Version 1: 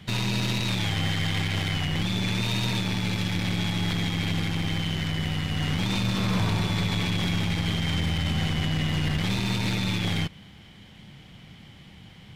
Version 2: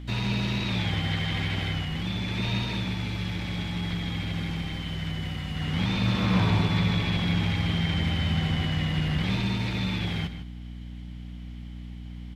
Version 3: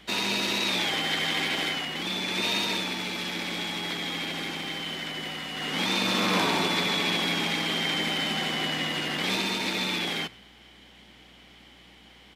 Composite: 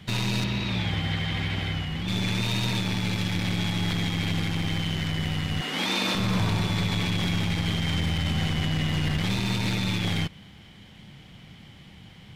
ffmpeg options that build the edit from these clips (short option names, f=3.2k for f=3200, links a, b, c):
-filter_complex "[0:a]asplit=3[a][b][c];[a]atrim=end=0.442[d];[1:a]atrim=start=0.438:end=2.082[e];[b]atrim=start=2.078:end=5.612[f];[2:a]atrim=start=5.608:end=6.152[g];[c]atrim=start=6.148[h];[d][e]acrossfade=d=0.004:c1=hsin:c2=hsin[i];[i][f]acrossfade=d=0.004:c1=hsin:c2=hsin[j];[j][g]acrossfade=d=0.004:c1=hsin:c2=hsin[k];[k][h]acrossfade=d=0.004:c1=hsin:c2=hsin"